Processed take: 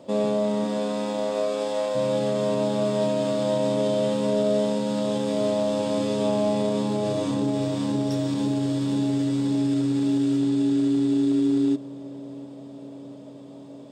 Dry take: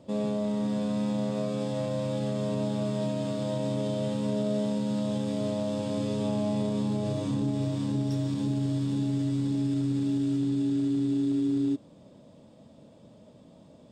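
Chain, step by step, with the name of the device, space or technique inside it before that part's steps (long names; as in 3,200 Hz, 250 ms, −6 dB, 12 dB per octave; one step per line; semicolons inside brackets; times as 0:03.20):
0:00.64–0:01.94: high-pass filter 190 Hz → 500 Hz 12 dB per octave
filter by subtraction (in parallel: low-pass filter 510 Hz 12 dB per octave + polarity inversion)
on the sum: feedback echo with a low-pass in the loop 696 ms, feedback 70%, level −20 dB
level +7 dB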